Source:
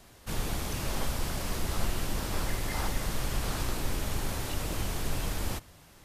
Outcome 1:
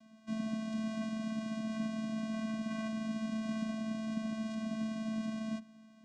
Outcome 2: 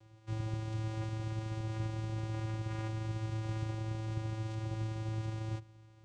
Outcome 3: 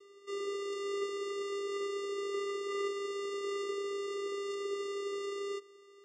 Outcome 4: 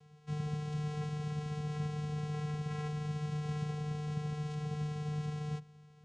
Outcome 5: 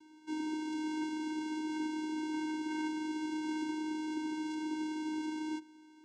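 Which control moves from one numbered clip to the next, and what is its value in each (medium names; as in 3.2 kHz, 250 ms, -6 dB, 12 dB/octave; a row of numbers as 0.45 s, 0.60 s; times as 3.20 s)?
vocoder, frequency: 220 Hz, 110 Hz, 400 Hz, 150 Hz, 310 Hz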